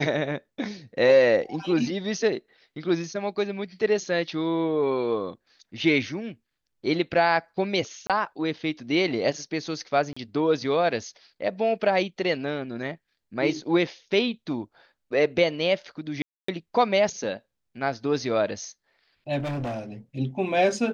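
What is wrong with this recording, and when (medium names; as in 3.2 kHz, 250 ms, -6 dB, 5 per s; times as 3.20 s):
8.07–8.10 s: dropout 27 ms
10.13–10.16 s: dropout 35 ms
16.22–16.48 s: dropout 264 ms
19.38–19.79 s: clipped -27 dBFS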